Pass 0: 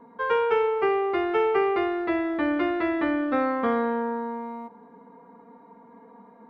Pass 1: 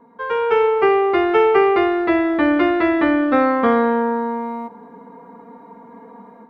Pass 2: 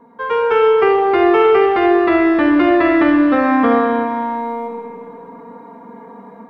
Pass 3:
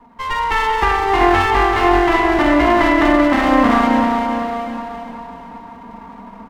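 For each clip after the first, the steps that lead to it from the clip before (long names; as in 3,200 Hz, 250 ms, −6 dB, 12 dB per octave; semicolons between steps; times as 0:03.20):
automatic gain control gain up to 9 dB
brickwall limiter −9.5 dBFS, peak gain reduction 4.5 dB; convolution reverb RT60 2.1 s, pre-delay 15 ms, DRR 3 dB; level +3 dB
lower of the sound and its delayed copy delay 1 ms; on a send: repeating echo 383 ms, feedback 43%, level −7 dB; on the sum: level +1 dB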